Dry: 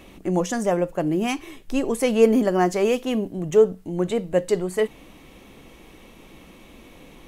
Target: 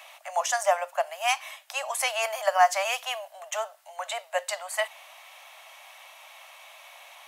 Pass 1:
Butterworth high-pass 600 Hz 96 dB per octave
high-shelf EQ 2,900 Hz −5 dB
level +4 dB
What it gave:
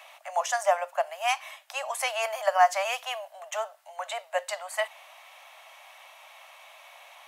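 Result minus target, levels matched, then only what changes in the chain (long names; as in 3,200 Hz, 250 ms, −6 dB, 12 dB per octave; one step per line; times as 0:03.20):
8,000 Hz band −3.5 dB
remove: high-shelf EQ 2,900 Hz −5 dB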